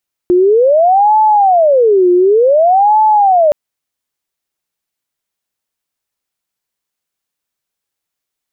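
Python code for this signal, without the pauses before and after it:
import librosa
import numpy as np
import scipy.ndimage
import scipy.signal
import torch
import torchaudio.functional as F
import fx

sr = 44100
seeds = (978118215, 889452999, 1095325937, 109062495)

y = fx.siren(sr, length_s=3.22, kind='wail', low_hz=355.0, high_hz=866.0, per_s=0.55, wave='sine', level_db=-5.5)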